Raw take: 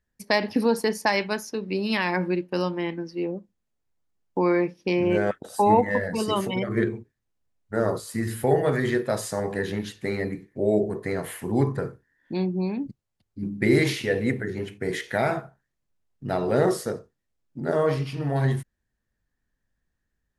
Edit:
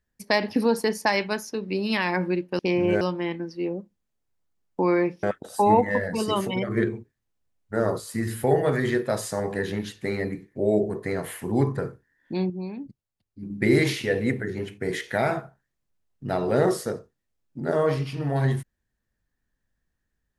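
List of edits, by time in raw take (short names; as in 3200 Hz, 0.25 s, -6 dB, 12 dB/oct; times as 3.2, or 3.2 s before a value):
4.81–5.23 move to 2.59
12.5–13.5 gain -6.5 dB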